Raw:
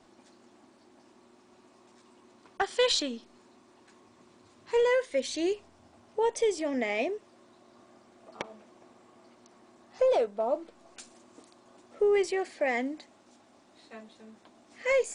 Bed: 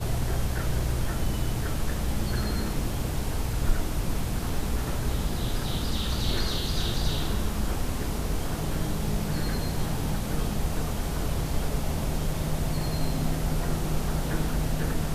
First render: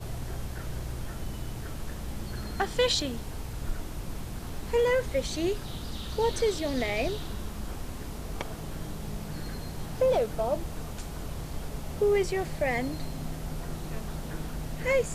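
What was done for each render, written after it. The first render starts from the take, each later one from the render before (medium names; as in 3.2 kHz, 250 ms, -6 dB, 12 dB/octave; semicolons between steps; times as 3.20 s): add bed -8.5 dB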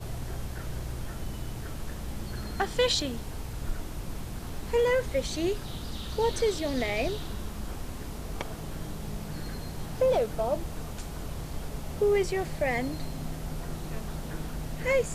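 no audible change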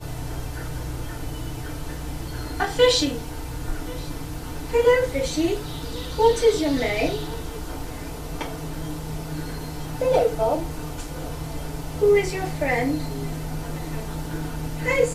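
delay 1080 ms -23 dB; FDN reverb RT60 0.31 s, low-frequency decay 0.75×, high-frequency decay 0.8×, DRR -5 dB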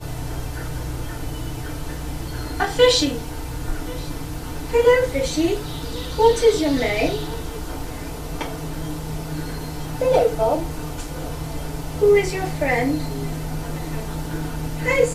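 trim +2.5 dB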